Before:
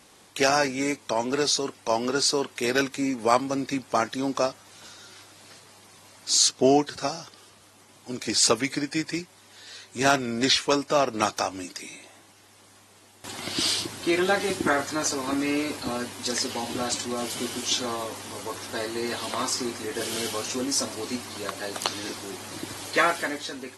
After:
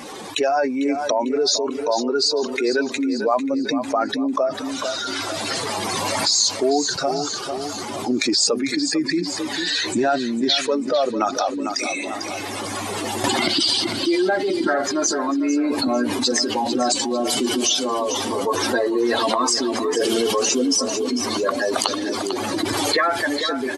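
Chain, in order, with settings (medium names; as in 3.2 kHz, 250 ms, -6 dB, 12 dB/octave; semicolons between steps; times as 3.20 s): spectral contrast enhancement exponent 2.1; recorder AGC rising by 12 dB/s; peaking EQ 71 Hz -11.5 dB 2.6 oct; feedback delay 448 ms, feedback 40%, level -12.5 dB; level flattener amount 50%; trim +1 dB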